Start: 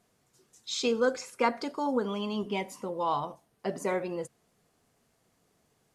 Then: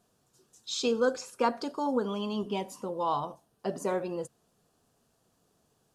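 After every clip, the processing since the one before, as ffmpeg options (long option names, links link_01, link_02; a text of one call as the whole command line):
ffmpeg -i in.wav -af "equalizer=frequency=2100:width_type=o:width=0.3:gain=-13" out.wav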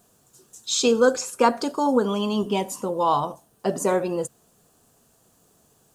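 ffmpeg -i in.wav -af "aexciter=amount=1.8:drive=6.7:freq=6700,volume=8.5dB" out.wav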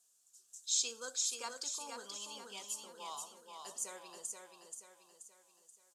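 ffmpeg -i in.wav -filter_complex "[0:a]bandpass=frequency=7100:width_type=q:width=1.2:csg=0,asplit=2[link_01][link_02];[link_02]aecho=0:1:480|960|1440|1920|2400|2880:0.562|0.253|0.114|0.0512|0.0231|0.0104[link_03];[link_01][link_03]amix=inputs=2:normalize=0,volume=-6dB" out.wav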